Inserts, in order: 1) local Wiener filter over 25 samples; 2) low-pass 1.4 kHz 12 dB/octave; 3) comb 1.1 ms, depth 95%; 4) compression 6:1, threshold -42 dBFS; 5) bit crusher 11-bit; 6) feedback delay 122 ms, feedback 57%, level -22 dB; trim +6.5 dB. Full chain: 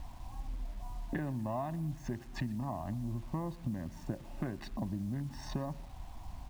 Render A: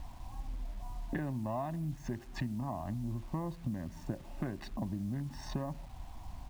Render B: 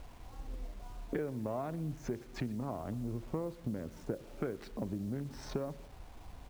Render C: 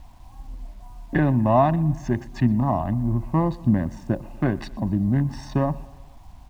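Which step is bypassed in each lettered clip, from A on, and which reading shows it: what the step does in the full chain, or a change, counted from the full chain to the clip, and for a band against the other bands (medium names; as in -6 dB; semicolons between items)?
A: 6, echo-to-direct -20.5 dB to none; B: 3, 500 Hz band +6.5 dB; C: 4, mean gain reduction 10.0 dB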